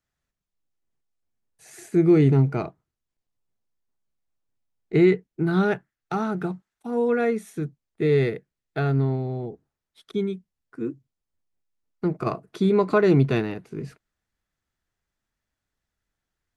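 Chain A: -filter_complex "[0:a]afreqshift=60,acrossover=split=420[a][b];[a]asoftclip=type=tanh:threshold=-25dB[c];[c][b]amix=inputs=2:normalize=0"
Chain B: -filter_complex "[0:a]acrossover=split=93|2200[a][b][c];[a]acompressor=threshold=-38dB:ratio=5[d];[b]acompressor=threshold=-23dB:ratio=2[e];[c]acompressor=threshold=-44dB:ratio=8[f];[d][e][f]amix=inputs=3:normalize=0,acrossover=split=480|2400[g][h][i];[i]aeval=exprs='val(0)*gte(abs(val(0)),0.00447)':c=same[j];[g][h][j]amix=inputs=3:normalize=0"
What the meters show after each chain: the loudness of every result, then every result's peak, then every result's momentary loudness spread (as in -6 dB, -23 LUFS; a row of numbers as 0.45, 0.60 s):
-26.5, -27.5 LUFS; -8.0, -12.5 dBFS; 15, 13 LU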